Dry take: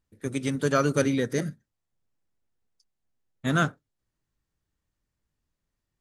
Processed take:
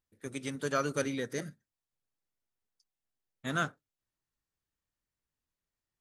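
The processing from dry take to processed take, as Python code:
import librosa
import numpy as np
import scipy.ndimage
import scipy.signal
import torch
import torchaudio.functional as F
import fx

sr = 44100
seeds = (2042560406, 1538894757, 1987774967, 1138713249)

y = fx.low_shelf(x, sr, hz=370.0, db=-7.5)
y = F.gain(torch.from_numpy(y), -5.5).numpy()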